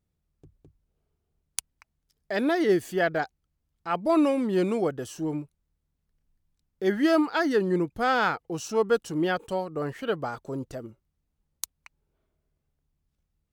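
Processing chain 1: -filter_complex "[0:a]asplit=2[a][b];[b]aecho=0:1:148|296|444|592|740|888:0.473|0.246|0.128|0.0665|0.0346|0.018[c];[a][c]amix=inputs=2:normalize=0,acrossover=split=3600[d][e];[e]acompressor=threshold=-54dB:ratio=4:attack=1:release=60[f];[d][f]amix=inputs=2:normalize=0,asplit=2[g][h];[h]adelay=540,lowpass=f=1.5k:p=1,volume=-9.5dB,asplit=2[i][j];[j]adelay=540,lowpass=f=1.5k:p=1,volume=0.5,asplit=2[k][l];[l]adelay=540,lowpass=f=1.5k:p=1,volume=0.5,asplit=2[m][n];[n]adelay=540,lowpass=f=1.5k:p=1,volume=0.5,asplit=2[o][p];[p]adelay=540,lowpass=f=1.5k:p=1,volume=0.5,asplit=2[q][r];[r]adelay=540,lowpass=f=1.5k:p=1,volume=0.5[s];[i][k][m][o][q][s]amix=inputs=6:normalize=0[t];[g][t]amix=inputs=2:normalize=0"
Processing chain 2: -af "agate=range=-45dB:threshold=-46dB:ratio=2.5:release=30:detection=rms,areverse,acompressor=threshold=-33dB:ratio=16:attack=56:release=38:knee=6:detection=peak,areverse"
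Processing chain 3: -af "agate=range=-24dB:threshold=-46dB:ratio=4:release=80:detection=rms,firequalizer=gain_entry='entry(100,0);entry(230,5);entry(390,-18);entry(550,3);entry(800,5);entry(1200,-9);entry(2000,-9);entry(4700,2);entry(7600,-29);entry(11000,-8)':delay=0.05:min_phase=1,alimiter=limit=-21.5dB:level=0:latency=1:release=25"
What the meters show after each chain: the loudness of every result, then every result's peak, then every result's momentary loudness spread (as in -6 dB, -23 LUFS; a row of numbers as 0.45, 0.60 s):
-25.5, -33.0, -31.0 LUFS; -10.5, -8.5, -21.5 dBFS; 18, 8, 20 LU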